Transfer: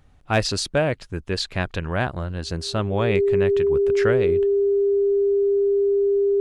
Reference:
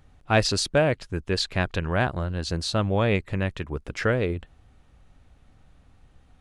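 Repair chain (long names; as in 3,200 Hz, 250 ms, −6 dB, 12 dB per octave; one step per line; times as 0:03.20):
clipped peaks rebuilt −8 dBFS
notch filter 400 Hz, Q 30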